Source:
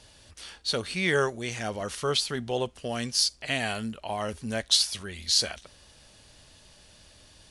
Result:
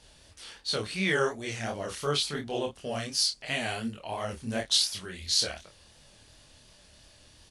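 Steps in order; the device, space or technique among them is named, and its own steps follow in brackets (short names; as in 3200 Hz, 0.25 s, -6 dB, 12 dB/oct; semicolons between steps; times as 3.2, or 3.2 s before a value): double-tracked vocal (doubler 27 ms -6 dB; chorus 2.8 Hz, delay 20 ms, depth 7.5 ms)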